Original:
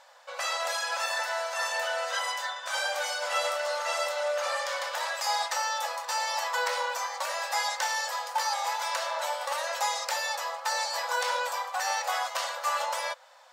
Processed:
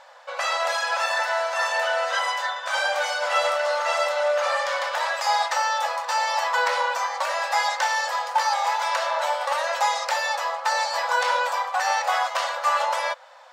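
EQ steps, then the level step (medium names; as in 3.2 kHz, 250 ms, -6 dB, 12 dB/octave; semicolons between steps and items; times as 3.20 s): low-pass 2.8 kHz 6 dB/octave; dynamic bell 460 Hz, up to -5 dB, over -51 dBFS, Q 5.3; +8.0 dB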